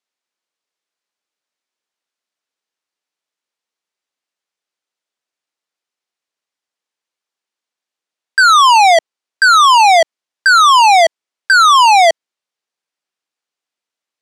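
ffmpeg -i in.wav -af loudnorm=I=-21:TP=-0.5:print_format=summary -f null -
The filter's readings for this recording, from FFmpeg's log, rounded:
Input Integrated:     -8.6 LUFS
Input True Peak:      -1.6 dBTP
Input LRA:             4.7 LU
Input Threshold:     -18.9 LUFS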